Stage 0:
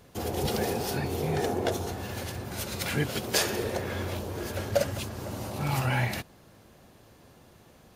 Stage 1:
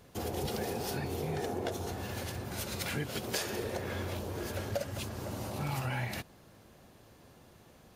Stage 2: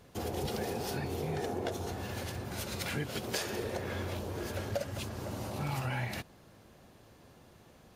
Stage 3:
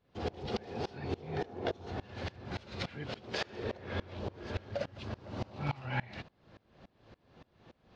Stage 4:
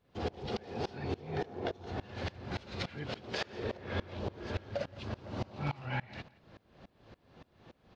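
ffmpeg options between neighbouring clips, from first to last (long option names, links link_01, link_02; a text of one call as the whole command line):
ffmpeg -i in.wav -af "acompressor=threshold=-30dB:ratio=3,volume=-2.5dB" out.wav
ffmpeg -i in.wav -af "highshelf=frequency=9200:gain=-4" out.wav
ffmpeg -i in.wav -af "lowpass=frequency=4600:width=0.5412,lowpass=frequency=4600:width=1.3066,aeval=exprs='val(0)*pow(10,-25*if(lt(mod(-3.5*n/s,1),2*abs(-3.5)/1000),1-mod(-3.5*n/s,1)/(2*abs(-3.5)/1000),(mod(-3.5*n/s,1)-2*abs(-3.5)/1000)/(1-2*abs(-3.5)/1000))/20)':channel_layout=same,volume=5dB" out.wav
ffmpeg -i in.wav -af "alimiter=level_in=1.5dB:limit=-24dB:level=0:latency=1:release=350,volume=-1.5dB,aecho=1:1:172|344:0.075|0.0225,volume=1.5dB" out.wav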